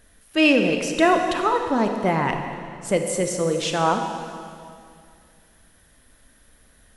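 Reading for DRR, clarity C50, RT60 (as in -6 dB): 4.5 dB, 5.5 dB, 2.3 s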